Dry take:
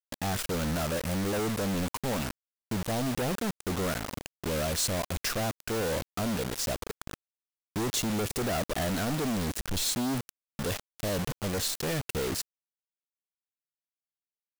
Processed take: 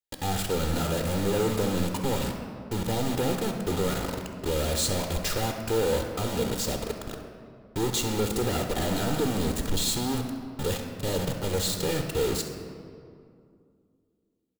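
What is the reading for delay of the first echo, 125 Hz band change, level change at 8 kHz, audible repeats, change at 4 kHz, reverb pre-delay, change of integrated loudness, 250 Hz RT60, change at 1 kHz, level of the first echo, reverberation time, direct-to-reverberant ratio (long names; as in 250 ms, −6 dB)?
67 ms, +3.5 dB, +1.5 dB, 1, +3.0 dB, 3 ms, +2.5 dB, 3.0 s, +2.5 dB, −13.0 dB, 2.4 s, 3.5 dB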